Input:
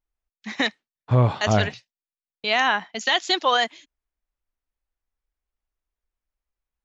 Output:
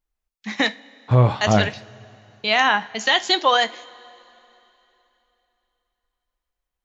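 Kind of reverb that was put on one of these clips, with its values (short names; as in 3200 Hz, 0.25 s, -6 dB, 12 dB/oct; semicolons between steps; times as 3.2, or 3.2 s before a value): two-slope reverb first 0.27 s, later 3.3 s, from -21 dB, DRR 11.5 dB; gain +2.5 dB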